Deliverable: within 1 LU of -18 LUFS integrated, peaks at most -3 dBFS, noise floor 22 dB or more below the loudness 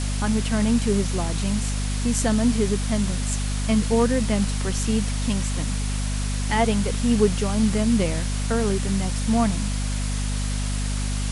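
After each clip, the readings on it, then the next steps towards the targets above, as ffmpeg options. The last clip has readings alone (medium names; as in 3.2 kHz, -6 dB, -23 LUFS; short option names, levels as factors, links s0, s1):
hum 50 Hz; highest harmonic 250 Hz; hum level -23 dBFS; noise floor -25 dBFS; noise floor target -46 dBFS; loudness -23.5 LUFS; peak level -6.5 dBFS; loudness target -18.0 LUFS
-> -af "bandreject=f=50:t=h:w=6,bandreject=f=100:t=h:w=6,bandreject=f=150:t=h:w=6,bandreject=f=200:t=h:w=6,bandreject=f=250:t=h:w=6"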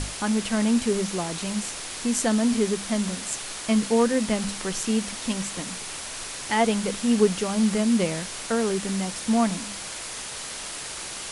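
hum not found; noise floor -36 dBFS; noise floor target -48 dBFS
-> -af "afftdn=nr=12:nf=-36"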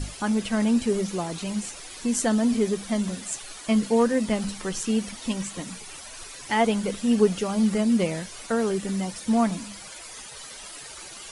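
noise floor -42 dBFS; noise floor target -48 dBFS
-> -af "afftdn=nr=6:nf=-42"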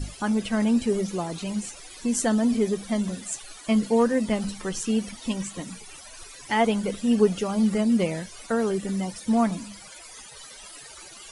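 noise floor -45 dBFS; noise floor target -48 dBFS
-> -af "afftdn=nr=6:nf=-45"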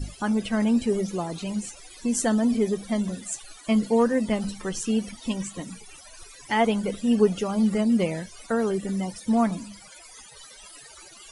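noise floor -48 dBFS; loudness -25.5 LUFS; peak level -8.0 dBFS; loudness target -18.0 LUFS
-> -af "volume=2.37,alimiter=limit=0.708:level=0:latency=1"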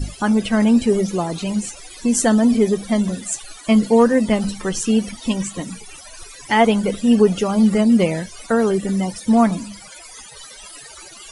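loudness -18.0 LUFS; peak level -3.0 dBFS; noise floor -40 dBFS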